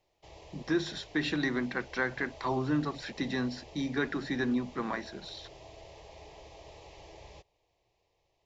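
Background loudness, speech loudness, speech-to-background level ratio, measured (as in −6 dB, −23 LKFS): −51.5 LKFS, −33.0 LKFS, 18.5 dB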